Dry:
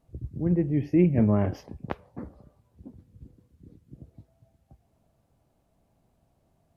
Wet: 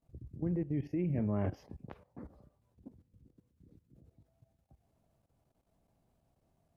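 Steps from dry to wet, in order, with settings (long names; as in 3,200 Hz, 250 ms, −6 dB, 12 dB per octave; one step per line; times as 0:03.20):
output level in coarse steps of 14 dB
level −4 dB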